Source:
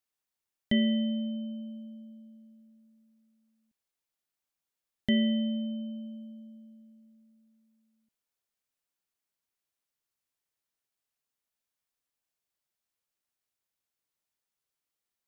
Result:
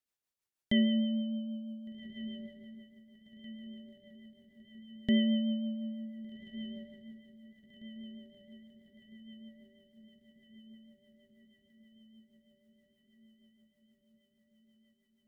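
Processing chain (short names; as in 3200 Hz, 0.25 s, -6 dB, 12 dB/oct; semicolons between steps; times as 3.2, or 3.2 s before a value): diffused feedback echo 1.57 s, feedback 61%, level -14 dB; rotary speaker horn 6.3 Hz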